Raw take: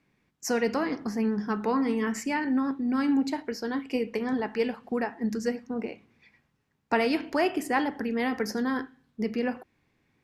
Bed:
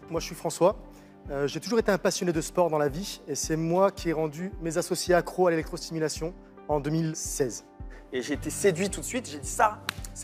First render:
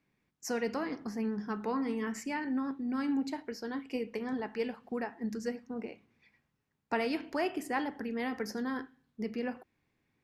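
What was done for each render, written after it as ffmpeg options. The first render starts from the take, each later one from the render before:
-af "volume=-7dB"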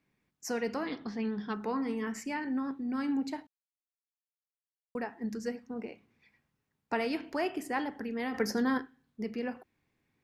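-filter_complex "[0:a]asettb=1/sr,asplit=3[a][b][c];[a]atrim=end=0.874[d];[b]atrim=start=0.87:end=1.54,asetpts=PTS-STARTPTS,afade=t=in:d=0.004:c=qsin,afade=t=out:st=0.666:d=0.004:c=qsin,lowpass=f=3.6k:t=q:w=7.4[e];[c]atrim=start=1.536[f];[d][e]acrossfade=d=0.004:c1=hsin:c2=qsin[g];[g][f]acrossfade=d=0.004:c1=qsin:c2=hsin,asettb=1/sr,asplit=3[h][i][j];[h]atrim=end=8.344[k];[i]atrim=start=8.34:end=8.78,asetpts=PTS-STARTPTS,afade=t=in:d=0.004:c=qsin,afade=t=out:st=0.436:d=0.004:c=qsin,acontrast=58[l];[j]atrim=start=8.776[m];[k][l]acrossfade=d=0.004:c1=hsin:c2=qsin[n];[n][m]acrossfade=d=0.004:c1=qsin:c2=hsin,asplit=3[o][p][q];[o]atrim=end=3.47,asetpts=PTS-STARTPTS,afade=t=out:st=3.466:d=0.004:c=hsin[r];[p]atrim=start=3.47:end=4.95,asetpts=PTS-STARTPTS,volume=0[s];[q]atrim=start=4.95,asetpts=PTS-STARTPTS,afade=t=in:d=0.004:c=hsin[t];[r][s][t]concat=n=3:v=0:a=1"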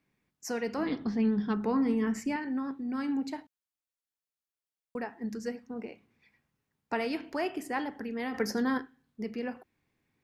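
-filter_complex "[0:a]asettb=1/sr,asplit=3[a][b][c];[a]atrim=end=0.784[d];[b]atrim=start=0.78:end=2.36,asetpts=PTS-STARTPTS,afade=t=in:d=0.004:c=qsin,afade=t=out:st=1.576:d=0.004:c=qsin,lowshelf=f=340:g=10.5[e];[c]atrim=start=2.356[f];[d][e]acrossfade=d=0.004:c1=hsin:c2=qsin[g];[g][f]acrossfade=d=0.004:c1=qsin:c2=hsin"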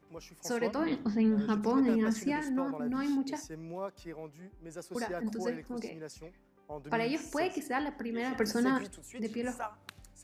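-filter_complex "[1:a]volume=-16.5dB[a];[0:a][a]amix=inputs=2:normalize=0"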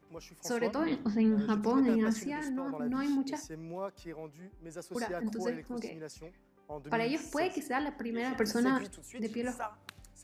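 -filter_complex "[0:a]asettb=1/sr,asplit=3[a][b][c];[a]atrim=end=2.244[d];[b]atrim=start=2.24:end=2.76,asetpts=PTS-STARTPTS,afade=t=in:d=0.004:c=qsin,afade=t=out:st=0.516:d=0.004:c=qsin,acompressor=threshold=-32dB:ratio=6:attack=3.2:release=140:knee=1:detection=peak[e];[c]atrim=start=2.756[f];[d][e]acrossfade=d=0.004:c1=hsin:c2=qsin[g];[g][f]acrossfade=d=0.004:c1=qsin:c2=hsin"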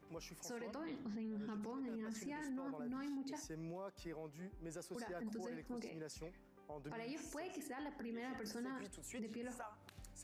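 -af "acompressor=threshold=-46dB:ratio=2,alimiter=level_in=15.5dB:limit=-24dB:level=0:latency=1:release=29,volume=-15.5dB"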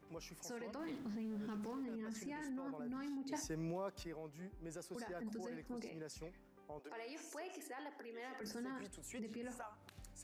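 -filter_complex "[0:a]asettb=1/sr,asplit=3[a][b][c];[a]atrim=end=0.794[d];[b]atrim=start=0.79:end=1.84,asetpts=PTS-STARTPTS,afade=t=in:d=0.004:c=qsin,afade=t=out:st=1.046:d=0.004:c=qsin,aeval=exprs='val(0)+0.5*0.00178*sgn(val(0))':c=same[e];[c]atrim=start=1.836[f];[d][e]acrossfade=d=0.004:c1=hsin:c2=qsin[g];[g][f]acrossfade=d=0.004:c1=qsin:c2=hsin,asettb=1/sr,asplit=3[h][i][j];[h]atrim=end=6.794[k];[i]atrim=start=6.79:end=8.41,asetpts=PTS-STARTPTS,afade=t=in:d=0.004:c=qsin,afade=t=out:st=1.616:d=0.004:c=qsin,highpass=f=330:w=0.5412,highpass=f=330:w=1.3066[l];[j]atrim=start=8.406[m];[k][l]acrossfade=d=0.004:c1=hsin:c2=qsin[n];[n][m]acrossfade=d=0.004:c1=qsin:c2=hsin,asplit=3[o][p][q];[o]atrim=end=3.322[r];[p]atrim=start=3.318:end=4.032,asetpts=PTS-STARTPTS,volume=5.5dB[s];[q]atrim=start=4.028[t];[r][s]acrossfade=d=0.004:c1=hsin:c2=hsin[u];[u][t]acrossfade=d=0.004:c1=hsin:c2=hsin"

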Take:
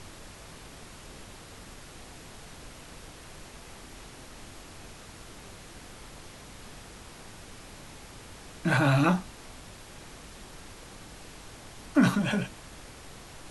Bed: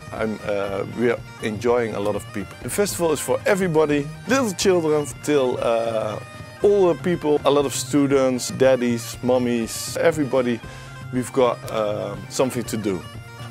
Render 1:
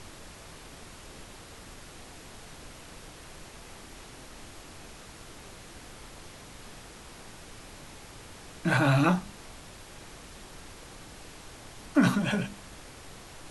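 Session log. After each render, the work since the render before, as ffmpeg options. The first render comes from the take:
-af "bandreject=f=50:t=h:w=4,bandreject=f=100:t=h:w=4,bandreject=f=150:t=h:w=4,bandreject=f=200:t=h:w=4,bandreject=f=250:t=h:w=4"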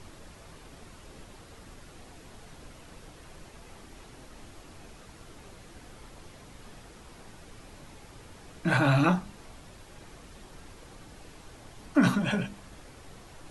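-af "afftdn=nr=6:nf=-48"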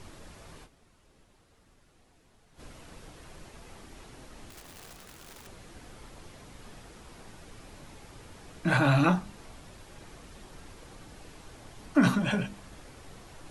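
-filter_complex "[0:a]asettb=1/sr,asplit=3[a][b][c];[a]atrim=end=4.504[d];[b]atrim=start=4.5:end=5.47,asetpts=PTS-STARTPTS,afade=t=in:d=0.004:c=qsin,afade=t=out:st=0.966:d=0.004:c=qsin,aeval=exprs='(mod(141*val(0)+1,2)-1)/141':c=same[e];[c]atrim=start=5.466[f];[d][e]acrossfade=d=0.004:c1=hsin:c2=qsin[g];[g][f]acrossfade=d=0.004:c1=qsin:c2=hsin,asplit=3[h][i][j];[h]atrim=end=0.85,asetpts=PTS-STARTPTS,afade=t=out:st=0.64:d=0.21:c=exp:silence=0.199526[k];[i]atrim=start=0.85:end=2.39,asetpts=PTS-STARTPTS,volume=-14dB[l];[j]atrim=start=2.39,asetpts=PTS-STARTPTS,afade=t=in:d=0.21:c=exp:silence=0.199526[m];[k][l][m]concat=n=3:v=0:a=1"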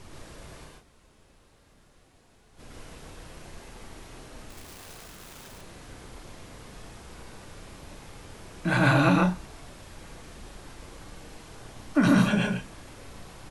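-filter_complex "[0:a]asplit=2[a][b];[b]adelay=34,volume=-12dB[c];[a][c]amix=inputs=2:normalize=0,aecho=1:1:110.8|142.9:0.708|0.794"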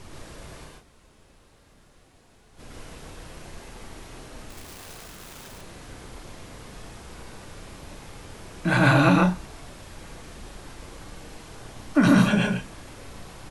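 -af "volume=3dB"

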